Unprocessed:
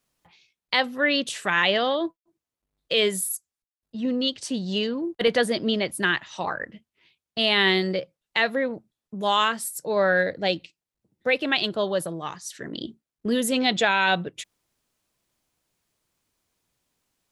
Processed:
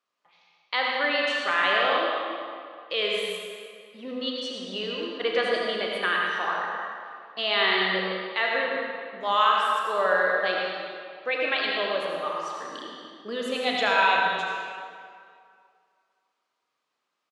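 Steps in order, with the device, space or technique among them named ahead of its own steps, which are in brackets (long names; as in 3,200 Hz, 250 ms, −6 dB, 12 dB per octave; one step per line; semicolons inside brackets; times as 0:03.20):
station announcement (band-pass filter 420–4,400 Hz; parametric band 1,200 Hz +9 dB 0.31 octaves; loudspeakers that aren't time-aligned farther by 13 metres −10 dB, 37 metres −12 dB; convolution reverb RT60 2.2 s, pre-delay 67 ms, DRR −1.5 dB)
level −5 dB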